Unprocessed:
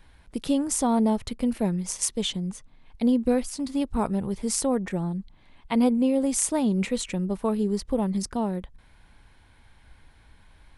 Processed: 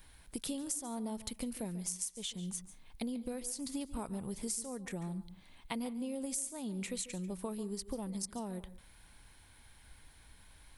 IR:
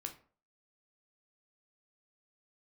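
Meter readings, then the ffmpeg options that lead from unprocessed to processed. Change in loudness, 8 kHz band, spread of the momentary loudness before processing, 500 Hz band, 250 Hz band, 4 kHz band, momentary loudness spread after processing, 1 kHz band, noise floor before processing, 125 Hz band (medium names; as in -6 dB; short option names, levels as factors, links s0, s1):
-14.0 dB, -9.0 dB, 8 LU, -16.0 dB, -15.5 dB, -10.0 dB, 18 LU, -16.0 dB, -56 dBFS, -13.0 dB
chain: -filter_complex "[0:a]aemphasis=mode=production:type=75fm,acompressor=threshold=0.0282:ratio=12,asplit=2[s0][s1];[1:a]atrim=start_sample=2205,adelay=142[s2];[s1][s2]afir=irnorm=-1:irlink=0,volume=0.251[s3];[s0][s3]amix=inputs=2:normalize=0,volume=0.562"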